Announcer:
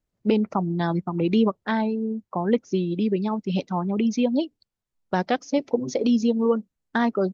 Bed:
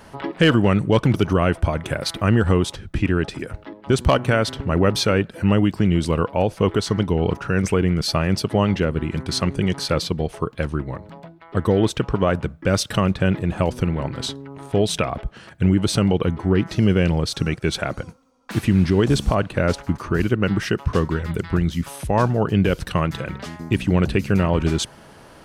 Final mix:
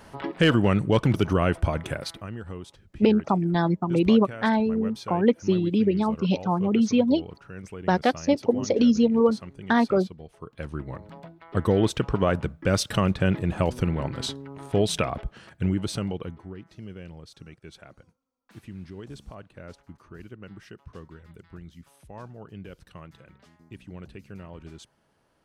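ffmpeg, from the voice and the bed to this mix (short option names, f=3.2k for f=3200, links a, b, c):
-filter_complex "[0:a]adelay=2750,volume=1.5dB[a];[1:a]volume=12.5dB,afade=t=out:st=1.81:d=0.47:silence=0.158489,afade=t=in:st=10.37:d=0.83:silence=0.149624,afade=t=out:st=15.03:d=1.53:silence=0.1[b];[a][b]amix=inputs=2:normalize=0"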